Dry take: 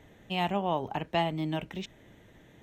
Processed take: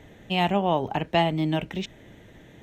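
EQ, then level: bell 1100 Hz -3 dB 0.77 oct; high shelf 8400 Hz -4.5 dB; +7.0 dB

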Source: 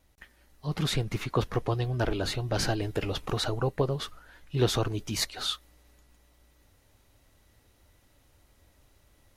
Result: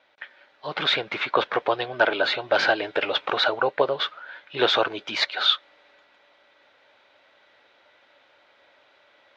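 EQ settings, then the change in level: speaker cabinet 490–4100 Hz, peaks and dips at 580 Hz +7 dB, 900 Hz +4 dB, 1500 Hz +9 dB, 2300 Hz +6 dB, 3500 Hz +6 dB; +7.0 dB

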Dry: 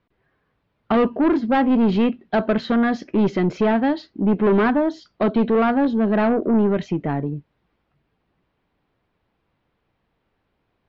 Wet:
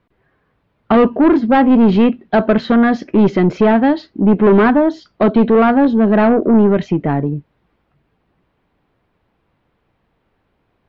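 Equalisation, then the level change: high shelf 3500 Hz -6 dB; +7.0 dB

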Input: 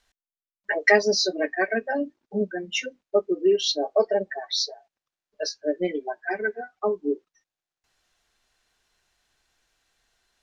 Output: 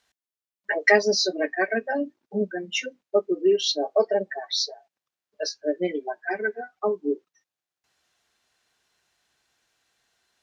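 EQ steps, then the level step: HPF 93 Hz 12 dB/oct; 0.0 dB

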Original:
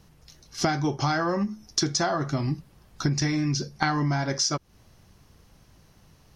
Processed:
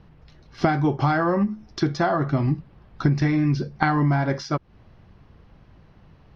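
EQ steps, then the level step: air absorption 360 m; +5.5 dB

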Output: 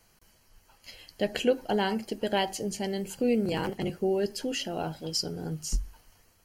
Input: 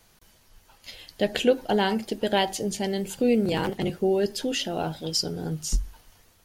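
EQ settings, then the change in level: Butterworth band-stop 3600 Hz, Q 6.1; -4.0 dB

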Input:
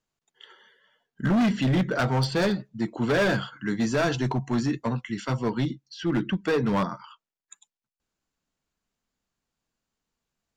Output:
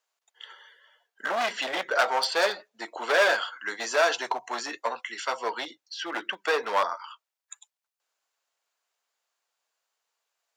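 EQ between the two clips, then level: HPF 550 Hz 24 dB/oct; +4.5 dB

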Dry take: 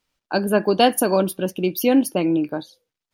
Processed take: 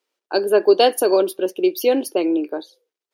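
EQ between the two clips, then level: dynamic EQ 4200 Hz, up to +7 dB, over -43 dBFS, Q 1.5; ladder high-pass 350 Hz, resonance 60%; +7.5 dB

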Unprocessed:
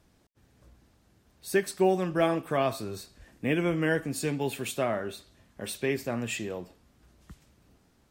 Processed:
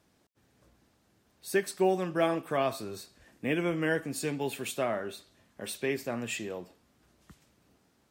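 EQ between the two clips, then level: HPF 170 Hz 6 dB/oct; -1.5 dB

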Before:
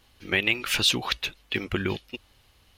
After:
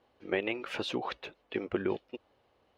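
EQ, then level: band-pass 530 Hz, Q 1.3; +2.0 dB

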